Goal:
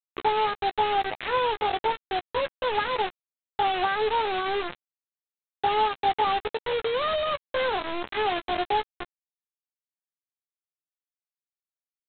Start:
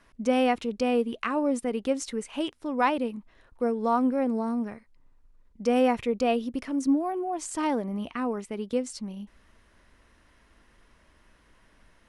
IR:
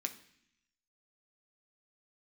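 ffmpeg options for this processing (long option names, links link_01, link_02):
-filter_complex "[0:a]acompressor=threshold=-26dB:ratio=10,bandpass=frequency=470:width_type=q:width=1.2:csg=0,asetrate=74167,aresample=44100,atempo=0.594604,aresample=8000,acrusher=bits=5:mix=0:aa=0.000001,aresample=44100,asplit=2[link_01][link_02];[link_02]adelay=14,volume=-12dB[link_03];[link_01][link_03]amix=inputs=2:normalize=0,volume=7dB"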